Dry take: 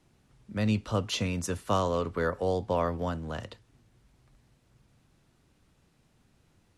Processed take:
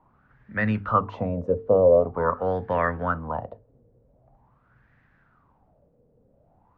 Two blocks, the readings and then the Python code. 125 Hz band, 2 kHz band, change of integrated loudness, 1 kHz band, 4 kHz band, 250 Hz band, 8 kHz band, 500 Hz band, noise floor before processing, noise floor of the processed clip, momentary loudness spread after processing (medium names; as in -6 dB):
+1.5 dB, +7.5 dB, +6.5 dB, +7.0 dB, under -15 dB, +2.0 dB, under -30 dB, +9.0 dB, -68 dBFS, -64 dBFS, 14 LU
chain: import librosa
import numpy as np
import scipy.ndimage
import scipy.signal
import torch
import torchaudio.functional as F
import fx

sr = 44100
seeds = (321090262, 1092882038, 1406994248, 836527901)

y = fx.filter_lfo_lowpass(x, sr, shape='sine', hz=0.45, low_hz=480.0, high_hz=1800.0, q=6.7)
y = fx.peak_eq(y, sr, hz=350.0, db=-7.0, octaves=0.25)
y = fx.hum_notches(y, sr, base_hz=50, count=9)
y = y * 10.0 ** (2.5 / 20.0)